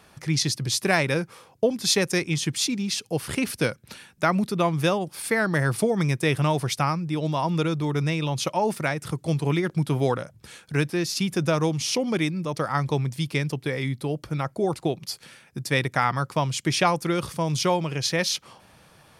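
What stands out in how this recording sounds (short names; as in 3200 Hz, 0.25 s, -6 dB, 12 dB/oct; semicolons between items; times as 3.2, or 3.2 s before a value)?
noise floor -55 dBFS; spectral tilt -4.5 dB/oct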